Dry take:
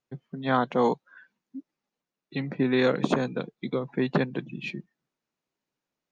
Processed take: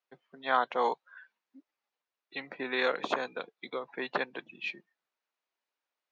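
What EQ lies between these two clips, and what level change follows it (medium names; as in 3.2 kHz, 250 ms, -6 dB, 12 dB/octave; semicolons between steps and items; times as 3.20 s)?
band-pass 680–4700 Hz; 0.0 dB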